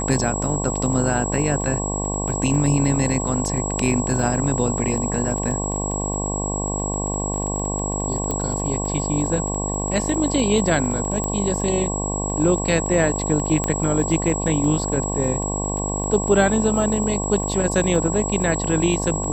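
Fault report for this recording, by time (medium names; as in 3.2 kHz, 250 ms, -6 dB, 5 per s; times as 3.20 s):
buzz 50 Hz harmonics 22 -26 dBFS
crackle 15 per s -27 dBFS
whine 7.7 kHz -27 dBFS
8.31 s: pop -11 dBFS
11.24 s: pop -12 dBFS
13.64 s: pop -9 dBFS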